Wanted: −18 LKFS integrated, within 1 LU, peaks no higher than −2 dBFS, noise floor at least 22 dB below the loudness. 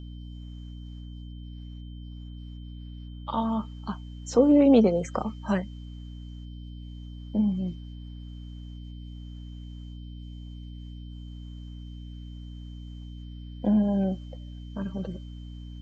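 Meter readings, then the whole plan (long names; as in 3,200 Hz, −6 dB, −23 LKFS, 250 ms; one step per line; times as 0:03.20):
mains hum 60 Hz; hum harmonics up to 300 Hz; level of the hum −37 dBFS; interfering tone 3,100 Hz; level of the tone −57 dBFS; integrated loudness −26.0 LKFS; sample peak −8.0 dBFS; target loudness −18.0 LKFS
→ hum removal 60 Hz, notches 5
notch filter 3,100 Hz, Q 30
level +8 dB
brickwall limiter −2 dBFS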